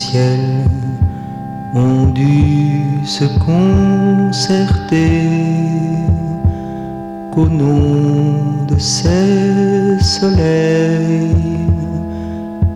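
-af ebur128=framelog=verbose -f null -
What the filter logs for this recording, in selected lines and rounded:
Integrated loudness:
  I:         -13.6 LUFS
  Threshold: -23.8 LUFS
Loudness range:
  LRA:         2.3 LU
  Threshold: -33.5 LUFS
  LRA low:   -14.8 LUFS
  LRA high:  -12.5 LUFS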